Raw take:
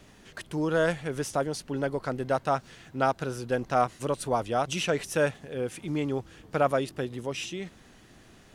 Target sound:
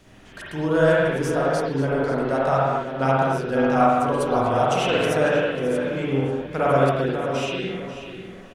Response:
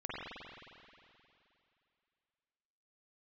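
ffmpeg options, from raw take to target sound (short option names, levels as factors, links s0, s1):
-filter_complex "[0:a]asplit=2[s0][s1];[s1]adelay=541,lowpass=f=3600:p=1,volume=0.376,asplit=2[s2][s3];[s3]adelay=541,lowpass=f=3600:p=1,volume=0.26,asplit=2[s4][s5];[s5]adelay=541,lowpass=f=3600:p=1,volume=0.26[s6];[s0][s2][s4][s6]amix=inputs=4:normalize=0[s7];[1:a]atrim=start_sample=2205,afade=t=out:st=0.33:d=0.01,atrim=end_sample=14994[s8];[s7][s8]afir=irnorm=-1:irlink=0,volume=1.78"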